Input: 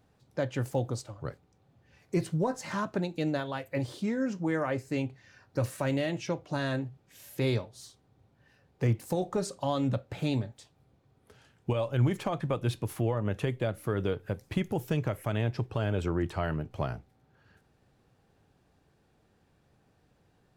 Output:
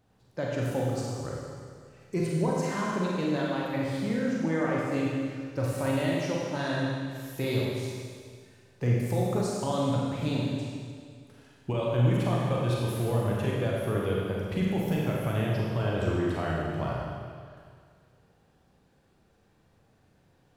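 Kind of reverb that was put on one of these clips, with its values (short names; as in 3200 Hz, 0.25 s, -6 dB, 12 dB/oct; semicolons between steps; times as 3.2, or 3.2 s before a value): Schroeder reverb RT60 2 s, combs from 33 ms, DRR -4 dB; gain -2.5 dB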